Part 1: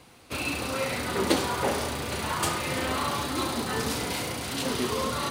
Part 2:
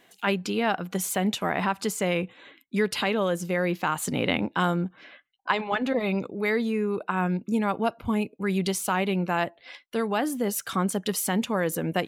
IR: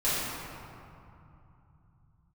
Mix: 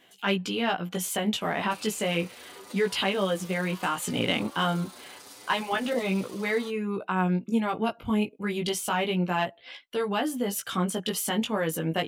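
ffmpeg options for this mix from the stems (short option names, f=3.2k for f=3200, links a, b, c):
-filter_complex "[0:a]bass=f=250:g=-15,treble=f=4k:g=6,acompressor=threshold=-37dB:ratio=6,asplit=2[a][b];[b]adelay=7.7,afreqshift=0.78[c];[a][c]amix=inputs=2:normalize=1,adelay=1400,volume=-5dB[d];[1:a]equalizer=f=3.1k:w=5:g=8,acontrast=77,flanger=delay=15.5:depth=3.3:speed=0.3,volume=-5.5dB[e];[d][e]amix=inputs=2:normalize=0"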